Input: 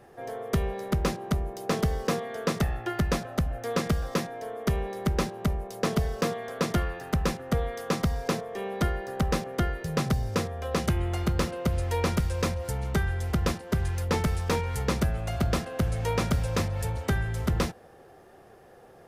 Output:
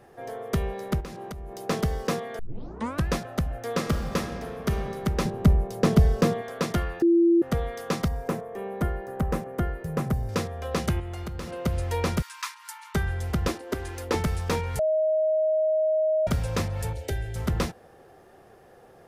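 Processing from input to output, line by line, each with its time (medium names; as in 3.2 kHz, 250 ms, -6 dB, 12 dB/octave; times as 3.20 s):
1.00–1.67 s: compression 16:1, threshold -33 dBFS
2.39 s: tape start 0.69 s
3.76–4.70 s: reverb throw, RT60 2.3 s, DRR 5.5 dB
5.25–6.42 s: bass shelf 420 Hz +10 dB
7.02–7.42 s: bleep 339 Hz -15.5 dBFS
8.08–10.29 s: peaking EQ 4.4 kHz -13.5 dB 1.8 oct
10.99–11.53 s: compression, threshold -31 dBFS
12.22–12.95 s: brick-wall FIR high-pass 840 Hz
13.48–14.15 s: resonant low shelf 230 Hz -8 dB, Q 3
14.79–16.27 s: bleep 627 Hz -20 dBFS
16.93–17.36 s: static phaser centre 470 Hz, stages 4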